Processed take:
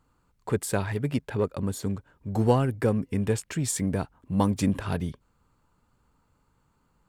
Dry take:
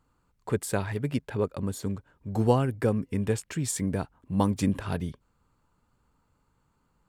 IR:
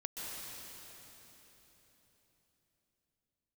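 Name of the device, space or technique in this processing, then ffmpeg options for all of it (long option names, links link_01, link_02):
parallel distortion: -filter_complex "[0:a]asplit=2[link_01][link_02];[link_02]asoftclip=type=hard:threshold=-26.5dB,volume=-11dB[link_03];[link_01][link_03]amix=inputs=2:normalize=0"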